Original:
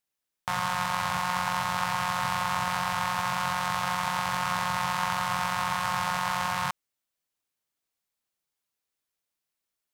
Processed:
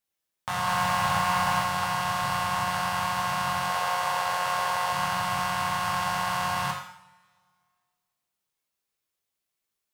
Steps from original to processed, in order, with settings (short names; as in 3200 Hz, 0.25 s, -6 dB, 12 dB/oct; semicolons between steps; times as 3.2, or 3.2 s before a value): 0.67–1.61 sample leveller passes 1; 3.69–4.92 resonant low shelf 340 Hz -8 dB, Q 3; two-slope reverb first 0.65 s, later 2.1 s, from -24 dB, DRR -2 dB; gain -2.5 dB